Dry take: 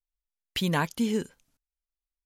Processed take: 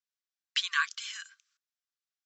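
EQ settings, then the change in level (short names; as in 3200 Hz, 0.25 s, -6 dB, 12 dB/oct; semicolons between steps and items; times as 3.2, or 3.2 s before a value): rippled Chebyshev high-pass 1100 Hz, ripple 6 dB; rippled Chebyshev low-pass 7700 Hz, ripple 3 dB; +6.5 dB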